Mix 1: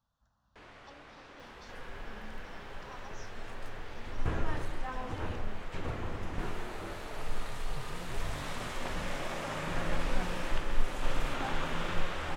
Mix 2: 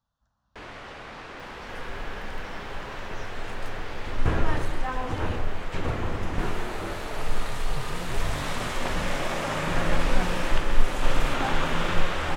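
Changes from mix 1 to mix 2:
first sound +12.0 dB; second sound +8.5 dB

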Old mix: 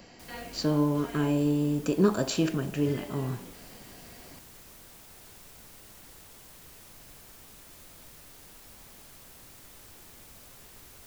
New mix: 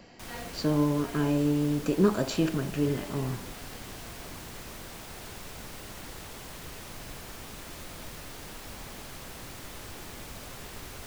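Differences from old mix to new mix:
background +11.5 dB; master: add high shelf 6700 Hz -10 dB

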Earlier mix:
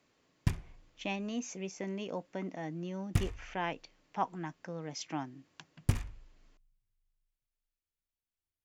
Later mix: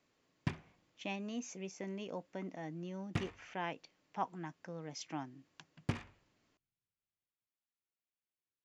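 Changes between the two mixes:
speech -4.5 dB; background: add BPF 180–3800 Hz

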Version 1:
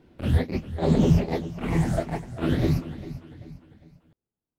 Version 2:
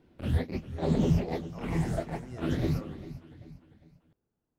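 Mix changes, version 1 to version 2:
speech +8.0 dB; background -6.0 dB

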